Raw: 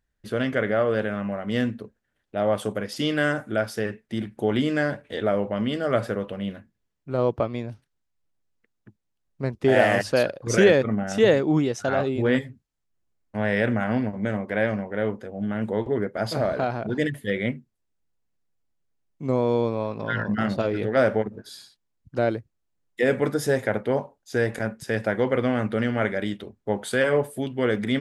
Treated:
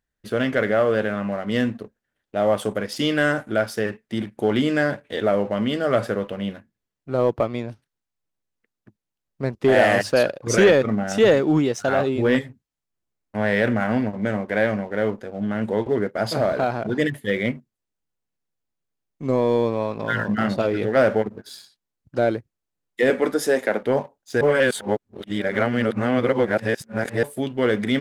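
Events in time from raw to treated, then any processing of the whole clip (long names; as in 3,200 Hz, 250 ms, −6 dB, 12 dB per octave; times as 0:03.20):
0:23.10–0:23.83: high-pass filter 210 Hz 24 dB per octave
0:24.41–0:27.23: reverse
whole clip: low-shelf EQ 110 Hz −6.5 dB; leveller curve on the samples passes 1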